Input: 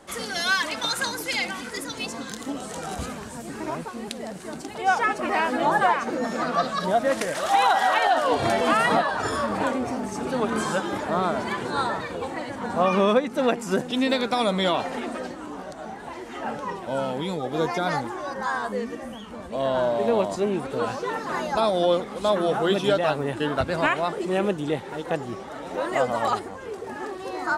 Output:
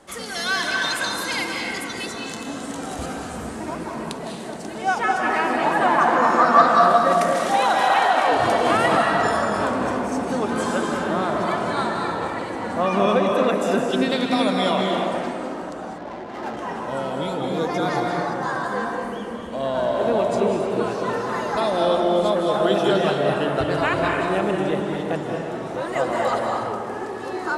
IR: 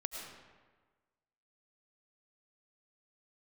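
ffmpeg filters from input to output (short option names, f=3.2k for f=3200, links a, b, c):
-filter_complex "[0:a]asettb=1/sr,asplit=3[a][b][c];[a]atrim=end=5.984[d];[b]atrim=start=5.98:end=6.72,asetpts=PTS-STARTPTS,afade=t=in:d=0.004:c=qsin,afade=t=out:st=0.736:d=0.004:c=qsin,equalizer=f=1.1k:w=0.98:g=13.5[e];[c]atrim=start=6.716[f];[d][e]acrossfade=d=0.004:c1=hsin:c2=qsin[g];[g][f]acrossfade=d=0.004:c1=qsin:c2=hsin[h];[1:a]atrim=start_sample=2205,asetrate=23814,aresample=44100[i];[h][i]afir=irnorm=-1:irlink=0,asettb=1/sr,asplit=3[j][k][l];[j]atrim=end=15.984[m];[k]atrim=start=15.98:end=16.57,asetpts=PTS-STARTPTS,afade=t=in:d=0.004:c=qsin,afade=t=out:st=0.586:d=0.004:c=qsin,adynamicsmooth=sensitivity=6.5:basefreq=580[n];[l]atrim=start=16.566[o];[m][n]acrossfade=d=0.004:c1=hsin:c2=qsin[p];[p][o]acrossfade=d=0.004:c1=qsin:c2=hsin,volume=-1.5dB"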